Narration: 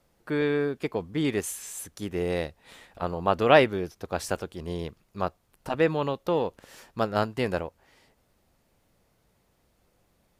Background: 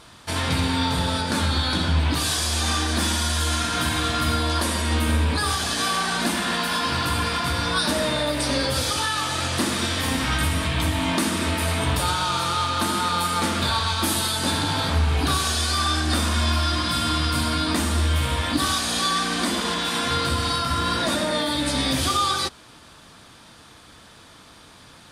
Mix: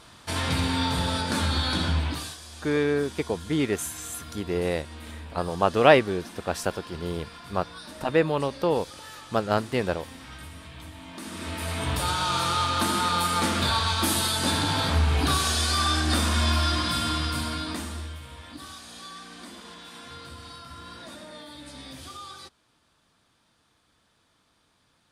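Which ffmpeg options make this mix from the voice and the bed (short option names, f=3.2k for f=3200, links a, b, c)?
-filter_complex "[0:a]adelay=2350,volume=1.5dB[a];[1:a]volume=15.5dB,afade=t=out:st=1.87:d=0.5:silence=0.141254,afade=t=in:st=11.13:d=1.27:silence=0.11885,afade=t=out:st=16.66:d=1.54:silence=0.125893[b];[a][b]amix=inputs=2:normalize=0"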